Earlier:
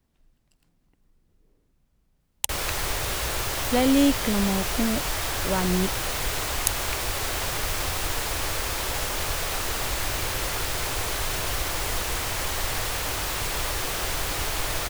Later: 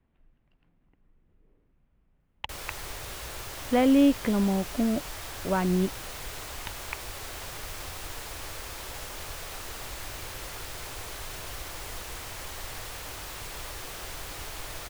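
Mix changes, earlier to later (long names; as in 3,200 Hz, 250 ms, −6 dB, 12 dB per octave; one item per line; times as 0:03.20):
speech: add low-pass filter 2,800 Hz 24 dB per octave
background −11.0 dB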